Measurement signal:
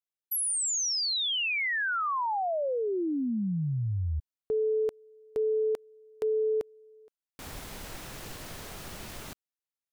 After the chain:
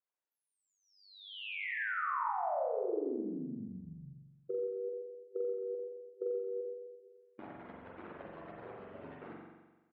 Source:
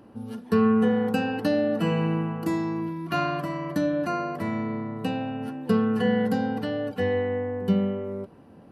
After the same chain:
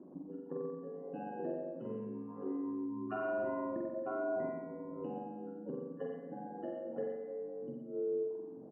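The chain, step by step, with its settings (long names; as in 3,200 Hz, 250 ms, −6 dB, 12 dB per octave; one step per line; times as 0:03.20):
expanding power law on the bin magnitudes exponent 2.1
reverb reduction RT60 0.76 s
dynamic equaliser 1,600 Hz, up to −5 dB, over −51 dBFS, Q 2.2
downward compressor 10 to 1, threshold −39 dBFS
ring modulation 49 Hz
band-pass filter 350–2,800 Hz
high-frequency loss of the air 460 metres
on a send: single-tap delay 117 ms −13.5 dB
on the sum: spring reverb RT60 1.2 s, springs 43 ms, chirp 65 ms, DRR −2 dB
level +7 dB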